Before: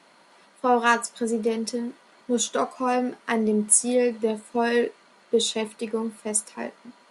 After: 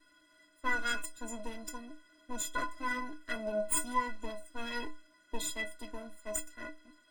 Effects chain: comb filter that takes the minimum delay 0.58 ms; inharmonic resonator 300 Hz, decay 0.27 s, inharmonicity 0.03; trim +6 dB

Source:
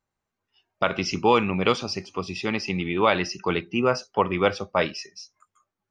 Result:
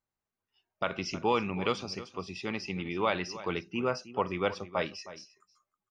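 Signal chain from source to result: echo from a far wall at 54 m, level -15 dB; trim -8.5 dB

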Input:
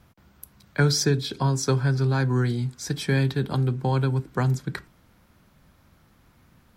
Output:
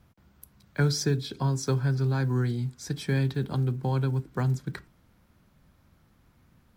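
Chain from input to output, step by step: block-companded coder 7-bit; bass shelf 350 Hz +4 dB; trim -6.5 dB

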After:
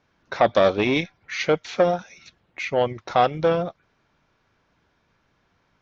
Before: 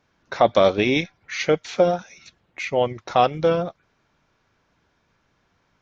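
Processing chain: low-pass 6.1 kHz 12 dB/octave; transformer saturation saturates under 780 Hz

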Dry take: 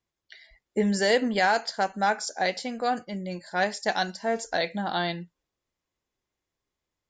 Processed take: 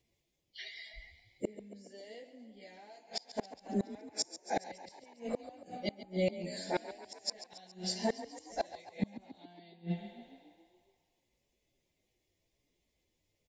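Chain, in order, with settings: plain phase-vocoder stretch 1.9×; FFT filter 630 Hz 0 dB, 1.4 kHz -19 dB, 2.1 kHz 0 dB, 6 kHz -2 dB; spring tank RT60 1.8 s, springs 49/60 ms, chirp 75 ms, DRR 19 dB; inverted gate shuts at -29 dBFS, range -34 dB; frequency-shifting echo 139 ms, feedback 61%, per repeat +31 Hz, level -14 dB; trim +8.5 dB

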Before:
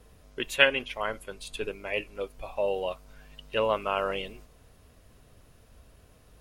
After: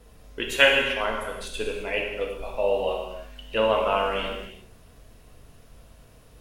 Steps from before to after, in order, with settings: gated-style reverb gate 400 ms falling, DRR -0.5 dB; trim +1.5 dB

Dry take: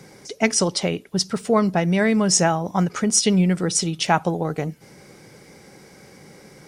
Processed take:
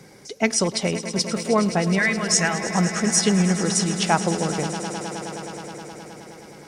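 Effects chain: 1.98–2.64 s: graphic EQ 250/500/1000/2000 Hz -9/-9/-4/+9 dB; on a send: echo with a slow build-up 105 ms, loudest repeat 5, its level -15 dB; on the sum: trim -1.5 dB

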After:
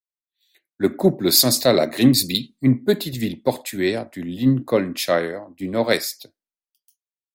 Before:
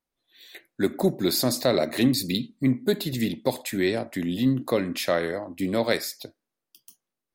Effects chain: three bands expanded up and down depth 100%; trim +4 dB

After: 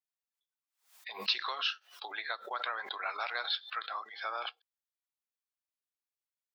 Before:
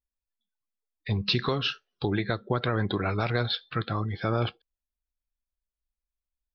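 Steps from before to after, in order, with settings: high-pass 770 Hz 24 dB/octave; swell ahead of each attack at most 140 dB/s; trim -3.5 dB

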